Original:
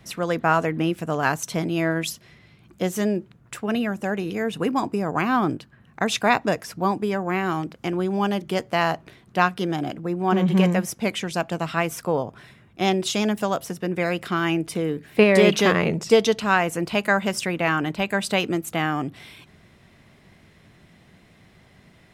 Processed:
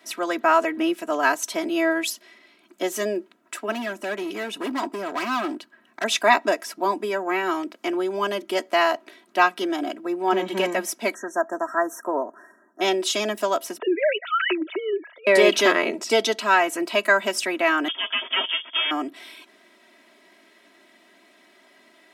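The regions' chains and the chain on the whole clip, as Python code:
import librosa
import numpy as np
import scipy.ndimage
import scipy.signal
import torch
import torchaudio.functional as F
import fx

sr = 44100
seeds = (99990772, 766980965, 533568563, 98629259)

y = fx.chain(x, sr, fx.peak_eq(hz=150.0, db=6.0, octaves=0.37),
    fx.clip_hard(threshold_db=-23.0), at=(3.72, 6.04))
y = fx.chain(y, sr, fx.brickwall_bandstop(low_hz=1900.0, high_hz=5500.0),
    fx.bass_treble(bass_db=-3, treble_db=-7), at=(11.14, 12.81))
y = fx.chain(y, sr, fx.sine_speech(),
    fx.over_compress(threshold_db=-23.0, ratio=-0.5), at=(13.78, 15.27))
y = fx.chain(y, sr, fx.lower_of_two(delay_ms=7.3),
    fx.freq_invert(carrier_hz=3400), at=(17.88, 18.91))
y = scipy.signal.sosfilt(scipy.signal.bessel(8, 360.0, 'highpass', norm='mag', fs=sr, output='sos'), y)
y = y + 0.83 * np.pad(y, (int(3.1 * sr / 1000.0), 0))[:len(y)]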